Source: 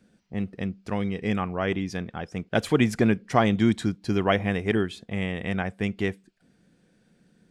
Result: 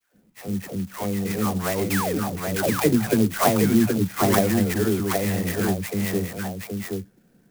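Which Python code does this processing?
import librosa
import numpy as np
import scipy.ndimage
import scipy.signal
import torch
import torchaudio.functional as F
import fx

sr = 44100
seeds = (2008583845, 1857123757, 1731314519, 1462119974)

p1 = scipy.signal.sosfilt(scipy.signal.butter(2, 3700.0, 'lowpass', fs=sr, output='sos'), x)
p2 = fx.hum_notches(p1, sr, base_hz=60, count=2)
p3 = fx.dispersion(p2, sr, late='lows', ms=143.0, hz=830.0)
p4 = fx.spec_paint(p3, sr, seeds[0], shape='fall', start_s=1.9, length_s=0.29, low_hz=240.0, high_hz=2800.0, level_db=-28.0)
p5 = p4 + fx.echo_single(p4, sr, ms=773, db=-4.0, dry=0)
p6 = fx.clock_jitter(p5, sr, seeds[1], jitter_ms=0.076)
y = p6 * 10.0 ** (2.0 / 20.0)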